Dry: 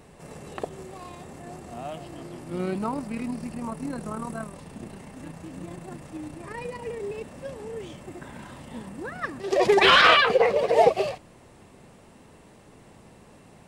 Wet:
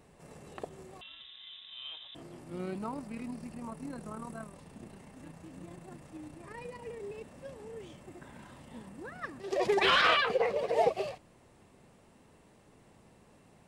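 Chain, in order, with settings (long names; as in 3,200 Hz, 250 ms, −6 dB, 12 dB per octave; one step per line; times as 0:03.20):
0:01.01–0:02.15: voice inversion scrambler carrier 3,800 Hz
level −9 dB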